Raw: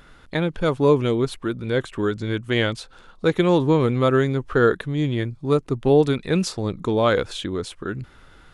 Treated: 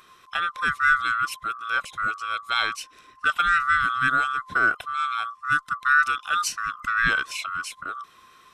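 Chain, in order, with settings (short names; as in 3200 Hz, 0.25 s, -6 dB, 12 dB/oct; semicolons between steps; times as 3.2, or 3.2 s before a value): band-swap scrambler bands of 1000 Hz; passive tone stack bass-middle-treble 5-5-5; gain +8.5 dB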